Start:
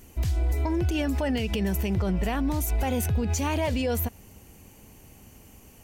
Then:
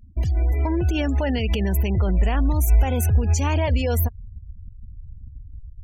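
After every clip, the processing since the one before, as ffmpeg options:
-filter_complex "[0:a]asubboost=boost=6:cutoff=72,afftfilt=real='re*gte(hypot(re,im),0.0141)':imag='im*gte(hypot(re,im),0.0141)':win_size=1024:overlap=0.75,asplit=2[s0][s1];[s1]acompressor=threshold=0.0398:ratio=6,volume=1[s2];[s0][s2]amix=inputs=2:normalize=0"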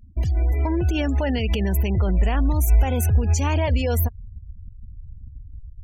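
-af anull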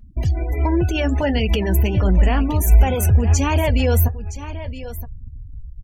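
-af "aecho=1:1:969:0.211,flanger=delay=4.8:depth=4.5:regen=-58:speed=1.4:shape=triangular,volume=2.66"

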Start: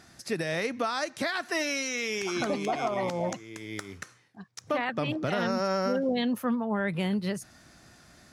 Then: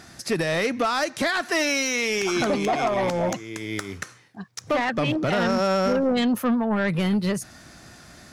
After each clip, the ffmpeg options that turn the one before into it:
-af "asoftclip=type=tanh:threshold=0.0596,volume=2.66"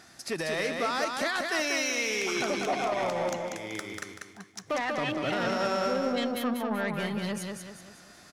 -filter_complex "[0:a]lowshelf=f=220:g=-9.5,asplit=2[s0][s1];[s1]aecho=0:1:191|382|573|764|955:0.631|0.259|0.106|0.0435|0.0178[s2];[s0][s2]amix=inputs=2:normalize=0,volume=0.501"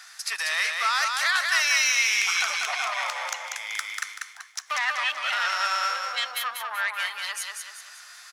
-af "highpass=f=1100:w=0.5412,highpass=f=1100:w=1.3066,volume=2.66"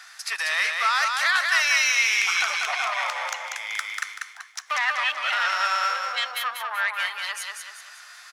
-af "bass=f=250:g=-5,treble=f=4000:g=-5,volume=1.33"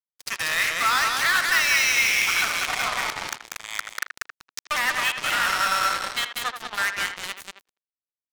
-filter_complex "[0:a]acrusher=bits=3:mix=0:aa=0.5,asplit=2[s0][s1];[s1]adelay=80,highpass=300,lowpass=3400,asoftclip=type=hard:threshold=0.141,volume=0.355[s2];[s0][s2]amix=inputs=2:normalize=0"

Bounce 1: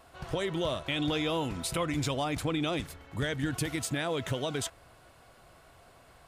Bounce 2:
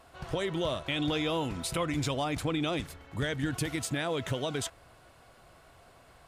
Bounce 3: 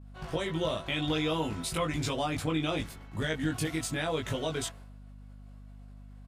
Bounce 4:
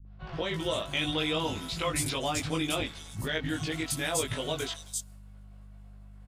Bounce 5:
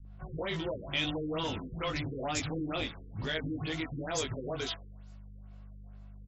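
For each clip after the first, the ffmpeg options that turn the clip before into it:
-af "highshelf=f=12000:g=-3.5"
-filter_complex "[0:a]agate=range=0.0224:threshold=0.00398:ratio=3:detection=peak,asplit=2[s0][s1];[s1]adelay=19,volume=0.794[s2];[s0][s2]amix=inputs=2:normalize=0,aeval=exprs='val(0)+0.00562*(sin(2*PI*50*n/s)+sin(2*PI*2*50*n/s)/2+sin(2*PI*3*50*n/s)/3+sin(2*PI*4*50*n/s)/4+sin(2*PI*5*50*n/s)/5)':c=same,volume=0.794"
-filter_complex "[0:a]acrossover=split=210|4900[s0][s1][s2];[s1]adelay=50[s3];[s2]adelay=320[s4];[s0][s3][s4]amix=inputs=3:normalize=0,adynamicequalizer=threshold=0.00316:dfrequency=2500:dqfactor=0.7:tfrequency=2500:tqfactor=0.7:attack=5:release=100:ratio=0.375:range=3.5:mode=boostabove:tftype=highshelf"
-filter_complex "[0:a]acrossover=split=2600[s0][s1];[s0]asoftclip=type=tanh:threshold=0.0335[s2];[s2][s1]amix=inputs=2:normalize=0,afftfilt=real='re*lt(b*sr/1024,490*pow(7900/490,0.5+0.5*sin(2*PI*2.2*pts/sr)))':imag='im*lt(b*sr/1024,490*pow(7900/490,0.5+0.5*sin(2*PI*2.2*pts/sr)))':win_size=1024:overlap=0.75"

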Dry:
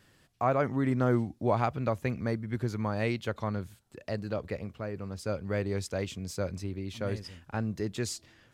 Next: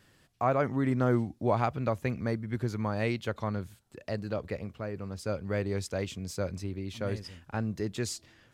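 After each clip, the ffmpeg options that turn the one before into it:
-af anull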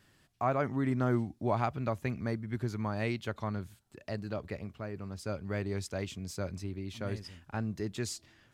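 -af "equalizer=f=500:t=o:w=0.2:g=-7,volume=0.75"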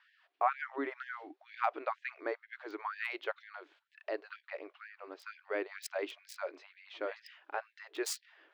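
-filter_complex "[0:a]acrossover=split=140|600|3600[s0][s1][s2][s3];[s3]acrusher=bits=5:mix=0:aa=0.5[s4];[s0][s1][s2][s4]amix=inputs=4:normalize=0,afftfilt=real='re*gte(b*sr/1024,270*pow(1600/270,0.5+0.5*sin(2*PI*2.1*pts/sr)))':imag='im*gte(b*sr/1024,270*pow(1600/270,0.5+0.5*sin(2*PI*2.1*pts/sr)))':win_size=1024:overlap=0.75,volume=1.41"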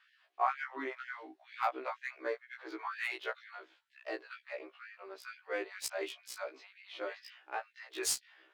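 -af "aemphasis=mode=production:type=75fm,adynamicsmooth=sensitivity=7.5:basefreq=6100,afftfilt=real='re*1.73*eq(mod(b,3),0)':imag='im*1.73*eq(mod(b,3),0)':win_size=2048:overlap=0.75,volume=1.19"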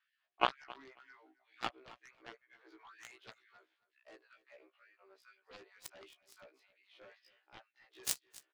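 -af "aeval=exprs='0.168*(cos(1*acos(clip(val(0)/0.168,-1,1)))-cos(1*PI/2))+0.00133*(cos(2*acos(clip(val(0)/0.168,-1,1)))-cos(2*PI/2))+0.0596*(cos(3*acos(clip(val(0)/0.168,-1,1)))-cos(3*PI/2))':c=same,aecho=1:1:269|538:0.1|0.015,volume=2.82"

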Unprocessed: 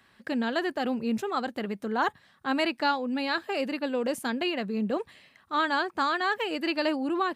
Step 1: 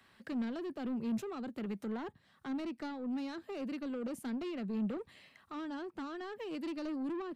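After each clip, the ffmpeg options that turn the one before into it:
-filter_complex "[0:a]bandreject=f=1700:w=24,acrossover=split=420[s0][s1];[s1]acompressor=threshold=0.00891:ratio=5[s2];[s0][s2]amix=inputs=2:normalize=0,acrossover=split=210[s3][s4];[s4]asoftclip=type=tanh:threshold=0.0188[s5];[s3][s5]amix=inputs=2:normalize=0,volume=0.708"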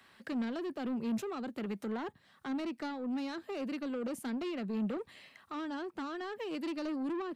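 -af "lowshelf=f=200:g=-7,volume=1.58"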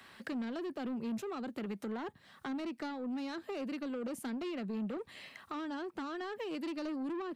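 -af "acompressor=threshold=0.00398:ratio=2,volume=1.88"

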